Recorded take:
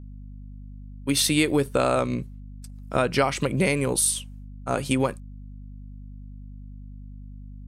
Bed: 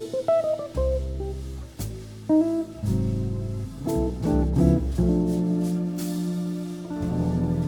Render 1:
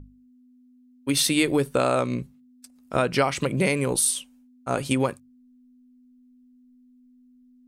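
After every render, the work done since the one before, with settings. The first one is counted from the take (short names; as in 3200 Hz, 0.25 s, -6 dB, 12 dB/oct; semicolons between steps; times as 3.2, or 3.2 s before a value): notches 50/100/150/200 Hz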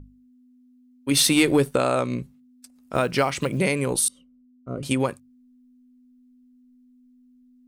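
1.11–1.76 sample leveller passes 1; 2.94–3.58 short-mantissa float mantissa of 4-bit; 4.08–4.83 running mean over 52 samples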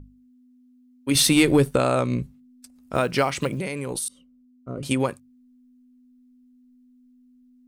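1.15–2.95 low shelf 120 Hz +10.5 dB; 3.53–4.88 compressor, threshold -25 dBFS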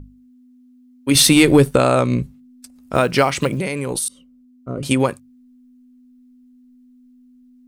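gain +6 dB; limiter -1 dBFS, peak gain reduction 1.5 dB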